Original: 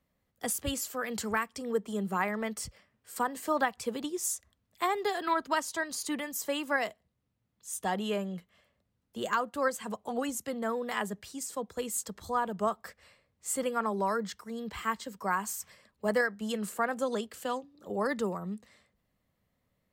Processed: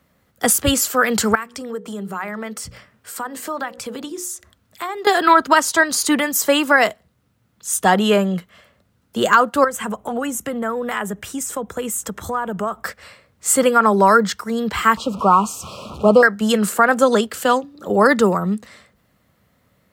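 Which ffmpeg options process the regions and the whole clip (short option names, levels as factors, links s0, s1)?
-filter_complex "[0:a]asettb=1/sr,asplit=3[s0][s1][s2];[s0]atrim=end=1.354[s3];[s1]atrim=start=1.35:end=5.07,asetpts=PTS-STARTPTS,afade=t=in:d=0.004:c=qsin,afade=t=out:st=3.716:d=0.004:c=qsin,bandreject=f=60:t=h:w=6,bandreject=f=120:t=h:w=6,bandreject=f=180:t=h:w=6,bandreject=f=240:t=h:w=6,bandreject=f=300:t=h:w=6,bandreject=f=360:t=h:w=6,bandreject=f=420:t=h:w=6,bandreject=f=480:t=h:w=6,bandreject=f=540:t=h:w=6,acompressor=threshold=0.00398:ratio=2.5:attack=3.2:release=140:knee=1:detection=peak[s4];[s2]atrim=start=5.066[s5];[s3][s4]acrossfade=d=0.004:c1=hsin:c2=qsin[s6];[s6][s5]acrossfade=d=0.004:c1=qsin:c2=hsin,asettb=1/sr,asplit=3[s7][s8][s9];[s7]atrim=end=9.644[s10];[s8]atrim=start=9.64:end=12.84,asetpts=PTS-STARTPTS,afade=t=in:d=0.004:c=qsin,afade=t=out:st=3.196:d=0.004:c=qsin,equalizer=f=4500:w=3.1:g=-13.5,acompressor=threshold=0.0112:ratio=3:attack=3.2:release=140:knee=1:detection=peak,aeval=exprs='val(0)+0.000282*(sin(2*PI*60*n/s)+sin(2*PI*2*60*n/s)/2+sin(2*PI*3*60*n/s)/3+sin(2*PI*4*60*n/s)/4+sin(2*PI*5*60*n/s)/5)':c=same[s11];[s9]atrim=start=12.836[s12];[s10][s11]acrossfade=d=0.004:c1=hsin:c2=qsin[s13];[s13][s12]acrossfade=d=0.004:c1=qsin:c2=hsin,asettb=1/sr,asplit=3[s14][s15][s16];[s14]atrim=end=14.974[s17];[s15]atrim=start=14.97:end=16.23,asetpts=PTS-STARTPTS,afade=t=in:d=0.004:c=qsin,afade=t=out:st=1.256:d=0.004:c=qsin,aeval=exprs='val(0)+0.5*0.00708*sgn(val(0))':c=same,asuperstop=centerf=1800:order=12:qfactor=1.6,aemphasis=mode=reproduction:type=75fm[s18];[s16]atrim=start=16.226[s19];[s17][s18]acrossfade=d=0.004:c1=hsin:c2=qsin[s20];[s20][s19]acrossfade=d=0.004:c1=qsin:c2=hsin,highpass=60,equalizer=f=1400:t=o:w=0.35:g=6,alimiter=level_in=7.5:limit=0.891:release=50:level=0:latency=1,volume=0.891"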